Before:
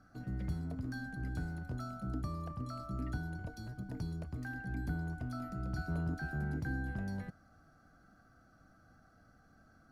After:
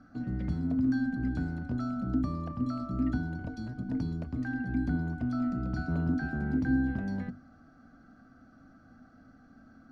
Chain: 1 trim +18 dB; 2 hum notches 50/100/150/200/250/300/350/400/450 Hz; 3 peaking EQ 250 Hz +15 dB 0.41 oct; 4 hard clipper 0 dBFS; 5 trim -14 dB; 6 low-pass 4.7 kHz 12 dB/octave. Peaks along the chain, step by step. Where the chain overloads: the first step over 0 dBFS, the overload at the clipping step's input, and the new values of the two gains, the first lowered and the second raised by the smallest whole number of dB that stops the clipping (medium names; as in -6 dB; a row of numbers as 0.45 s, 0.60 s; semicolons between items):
-6.0 dBFS, -8.5 dBFS, -3.0 dBFS, -3.0 dBFS, -17.0 dBFS, -17.0 dBFS; nothing clips